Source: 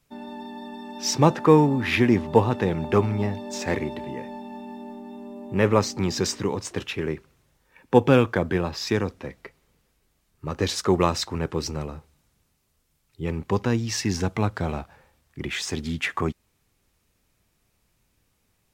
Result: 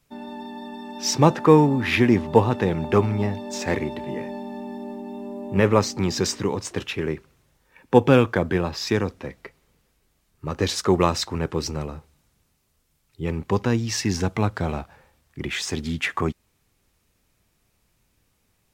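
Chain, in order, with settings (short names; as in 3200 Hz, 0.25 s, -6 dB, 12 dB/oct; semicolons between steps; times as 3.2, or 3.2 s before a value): 4.06–5.6 doubler 20 ms -2.5 dB; gain +1.5 dB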